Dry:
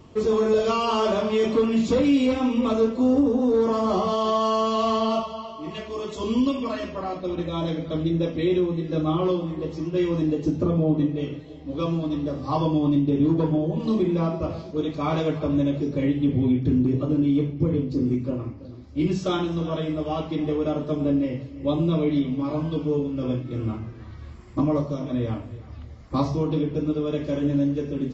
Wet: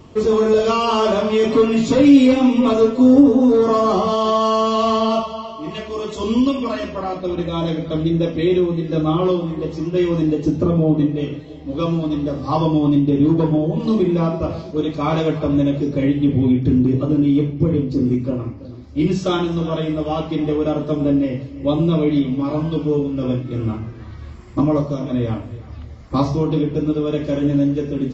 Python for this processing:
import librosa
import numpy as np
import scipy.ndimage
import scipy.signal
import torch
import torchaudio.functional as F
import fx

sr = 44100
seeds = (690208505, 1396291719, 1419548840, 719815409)

y = fx.comb(x, sr, ms=7.3, depth=0.76, at=(1.5, 3.93))
y = F.gain(torch.from_numpy(y), 5.5).numpy()